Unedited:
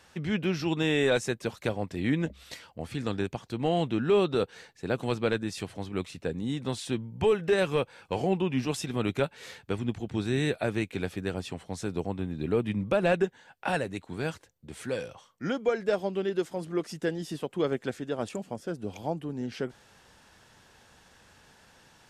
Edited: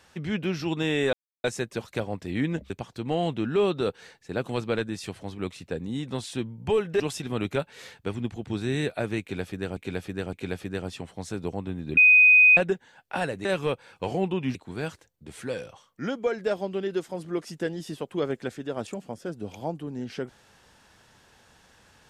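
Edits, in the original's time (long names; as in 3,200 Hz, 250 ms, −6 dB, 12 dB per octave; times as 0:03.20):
0:01.13: splice in silence 0.31 s
0:02.39–0:03.24: remove
0:07.54–0:08.64: move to 0:13.97
0:10.85–0:11.41: repeat, 3 plays
0:12.49–0:13.09: beep over 2,500 Hz −12 dBFS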